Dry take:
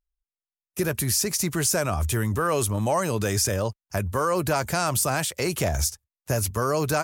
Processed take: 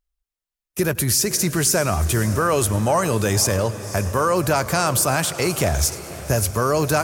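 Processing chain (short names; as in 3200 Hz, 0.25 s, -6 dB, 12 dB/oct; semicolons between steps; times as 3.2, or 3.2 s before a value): diffused feedback echo 0.546 s, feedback 47%, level -14 dB; warbling echo 0.107 s, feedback 57%, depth 176 cents, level -20 dB; gain +4.5 dB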